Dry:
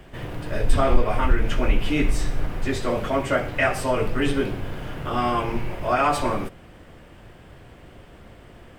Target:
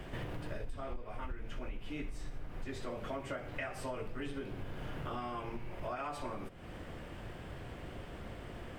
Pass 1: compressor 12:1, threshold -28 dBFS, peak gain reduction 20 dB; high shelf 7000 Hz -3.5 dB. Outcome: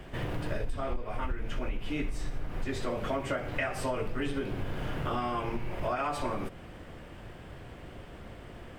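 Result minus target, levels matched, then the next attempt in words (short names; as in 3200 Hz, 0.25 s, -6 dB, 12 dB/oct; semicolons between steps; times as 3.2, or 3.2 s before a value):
compressor: peak gain reduction -8.5 dB
compressor 12:1, threshold -37 dBFS, peak gain reduction 28.5 dB; high shelf 7000 Hz -3.5 dB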